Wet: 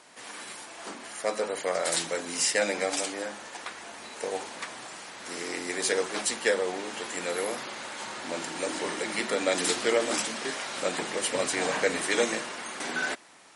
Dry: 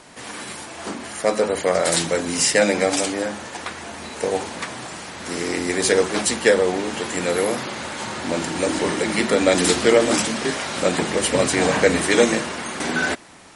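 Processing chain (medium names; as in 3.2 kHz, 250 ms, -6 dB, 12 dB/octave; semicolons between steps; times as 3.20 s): high-pass 500 Hz 6 dB/octave; trim -7 dB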